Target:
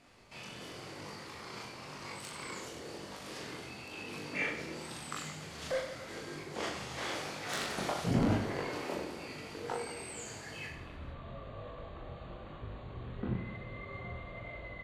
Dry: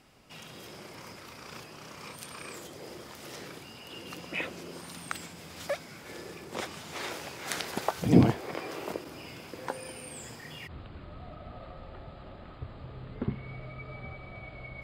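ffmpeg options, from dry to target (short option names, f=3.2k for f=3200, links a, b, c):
-af "lowpass=11k,bandreject=f=50:t=h:w=6,bandreject=f=100:t=h:w=6,bandreject=f=150:t=h:w=6,bandreject=f=200:t=h:w=6,bandreject=f=250:t=h:w=6,bandreject=f=300:t=h:w=6,bandreject=f=350:t=h:w=6,bandreject=f=400:t=h:w=6,asetrate=40440,aresample=44100,atempo=1.09051,asoftclip=type=tanh:threshold=-23.5dB,flanger=delay=20:depth=4.7:speed=0.95,aecho=1:1:40|96|174.4|284.2|437.8:0.631|0.398|0.251|0.158|0.1,volume=1.5dB"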